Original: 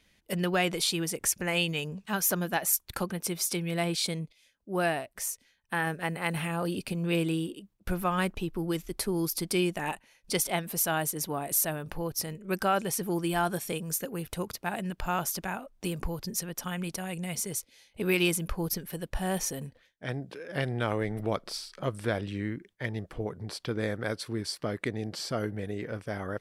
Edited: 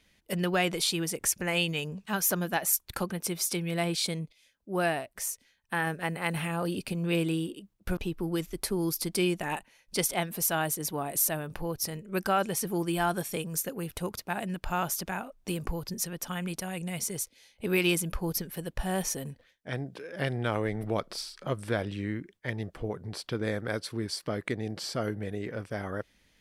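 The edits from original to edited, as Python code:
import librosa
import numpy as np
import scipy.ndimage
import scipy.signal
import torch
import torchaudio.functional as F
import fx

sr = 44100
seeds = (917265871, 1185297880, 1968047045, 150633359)

y = fx.edit(x, sr, fx.cut(start_s=7.97, length_s=0.36), tone=tone)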